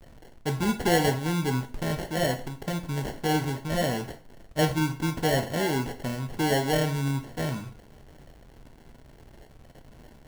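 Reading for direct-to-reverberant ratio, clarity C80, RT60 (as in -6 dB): 6.0 dB, 17.0 dB, 0.40 s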